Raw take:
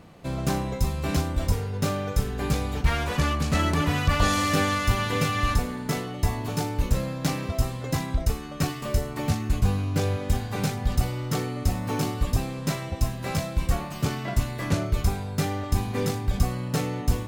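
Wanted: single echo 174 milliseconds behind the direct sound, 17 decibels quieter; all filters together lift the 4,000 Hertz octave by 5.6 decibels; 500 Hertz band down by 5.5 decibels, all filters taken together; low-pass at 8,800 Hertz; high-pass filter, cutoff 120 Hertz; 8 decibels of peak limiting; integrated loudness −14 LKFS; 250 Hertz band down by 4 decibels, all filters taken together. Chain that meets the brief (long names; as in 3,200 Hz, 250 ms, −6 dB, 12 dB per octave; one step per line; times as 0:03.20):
high-pass filter 120 Hz
low-pass filter 8,800 Hz
parametric band 250 Hz −3.5 dB
parametric band 500 Hz −6 dB
parametric band 4,000 Hz +7.5 dB
brickwall limiter −19.5 dBFS
single-tap delay 174 ms −17 dB
level +17 dB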